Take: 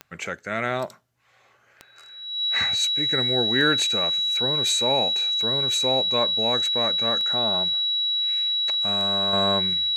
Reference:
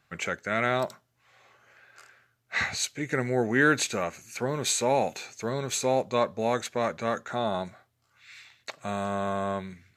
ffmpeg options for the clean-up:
-af "adeclick=t=4,bandreject=f=3900:w=30,asetnsamples=n=441:p=0,asendcmd='9.33 volume volume -6dB',volume=1"

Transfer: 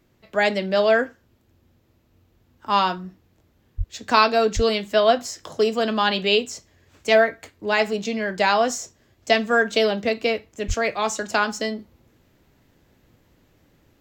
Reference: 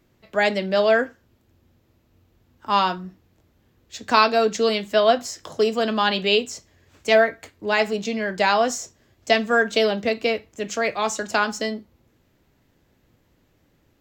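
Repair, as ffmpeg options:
-filter_complex "[0:a]asplit=3[s0][s1][s2];[s0]afade=t=out:st=3.77:d=0.02[s3];[s1]highpass=f=140:w=0.5412,highpass=f=140:w=1.3066,afade=t=in:st=3.77:d=0.02,afade=t=out:st=3.89:d=0.02[s4];[s2]afade=t=in:st=3.89:d=0.02[s5];[s3][s4][s5]amix=inputs=3:normalize=0,asplit=3[s6][s7][s8];[s6]afade=t=out:st=4.55:d=0.02[s9];[s7]highpass=f=140:w=0.5412,highpass=f=140:w=1.3066,afade=t=in:st=4.55:d=0.02,afade=t=out:st=4.67:d=0.02[s10];[s8]afade=t=in:st=4.67:d=0.02[s11];[s9][s10][s11]amix=inputs=3:normalize=0,asplit=3[s12][s13][s14];[s12]afade=t=out:st=10.67:d=0.02[s15];[s13]highpass=f=140:w=0.5412,highpass=f=140:w=1.3066,afade=t=in:st=10.67:d=0.02,afade=t=out:st=10.79:d=0.02[s16];[s14]afade=t=in:st=10.79:d=0.02[s17];[s15][s16][s17]amix=inputs=3:normalize=0,asetnsamples=n=441:p=0,asendcmd='11.79 volume volume -3.5dB',volume=1"

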